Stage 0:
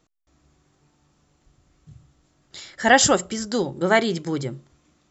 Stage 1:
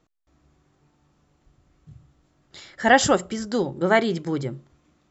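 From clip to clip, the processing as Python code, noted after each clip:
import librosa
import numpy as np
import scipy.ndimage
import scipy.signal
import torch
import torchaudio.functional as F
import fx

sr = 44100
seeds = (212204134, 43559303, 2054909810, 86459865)

y = fx.high_shelf(x, sr, hz=4200.0, db=-9.5)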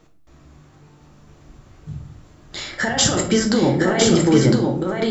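y = fx.over_compress(x, sr, threshold_db=-26.0, ratio=-1.0)
y = y + 10.0 ** (-4.0 / 20.0) * np.pad(y, (int(1007 * sr / 1000.0), 0))[:len(y)]
y = fx.room_shoebox(y, sr, seeds[0], volume_m3=63.0, walls='mixed', distance_m=0.54)
y = F.gain(torch.from_numpy(y), 7.0).numpy()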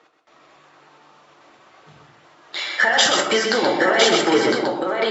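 y = fx.spec_quant(x, sr, step_db=15)
y = fx.bandpass_edges(y, sr, low_hz=640.0, high_hz=3900.0)
y = y + 10.0 ** (-6.0 / 20.0) * np.pad(y, (int(128 * sr / 1000.0), 0))[:len(y)]
y = F.gain(torch.from_numpy(y), 7.0).numpy()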